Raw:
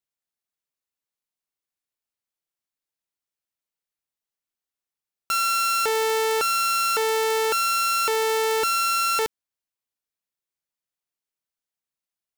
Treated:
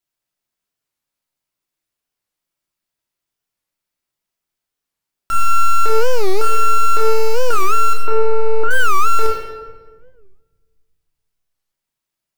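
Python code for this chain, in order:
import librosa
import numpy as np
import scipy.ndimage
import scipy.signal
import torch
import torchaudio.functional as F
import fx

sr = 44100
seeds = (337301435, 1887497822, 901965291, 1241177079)

y = np.minimum(x, 2.0 * 10.0 ** (-27.5 / 20.0) - x)
y = fx.lowpass(y, sr, hz=1700.0, slope=12, at=(7.93, 8.71))
y = fx.room_shoebox(y, sr, seeds[0], volume_m3=1200.0, walls='mixed', distance_m=2.9)
y = fx.record_warp(y, sr, rpm=45.0, depth_cents=250.0)
y = F.gain(torch.from_numpy(y), 3.0).numpy()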